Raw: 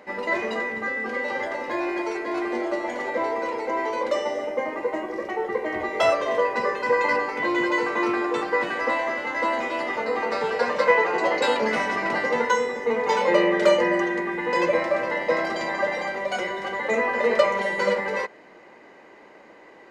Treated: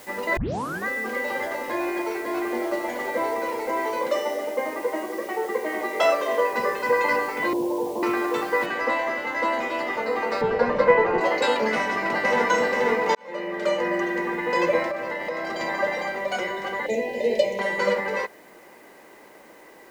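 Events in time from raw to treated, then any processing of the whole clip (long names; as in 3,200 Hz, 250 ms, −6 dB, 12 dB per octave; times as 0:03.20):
0:00.37: tape start 0.49 s
0:01.71–0:02.62: high-shelf EQ 6,500 Hz −8 dB
0:04.07–0:06.53: high-pass filter 210 Hz 24 dB per octave
0:07.53–0:08.03: Butterworth low-pass 950 Hz 72 dB per octave
0:08.66: noise floor change −48 dB −60 dB
0:10.41–0:11.21: RIAA equalisation playback
0:11.76–0:12.47: delay throw 480 ms, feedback 60%, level −1.5 dB
0:13.15–0:14.23: fade in
0:14.90–0:15.60: downward compressor, threshold −25 dBFS
0:16.86–0:17.59: Butterworth band-reject 1,300 Hz, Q 0.7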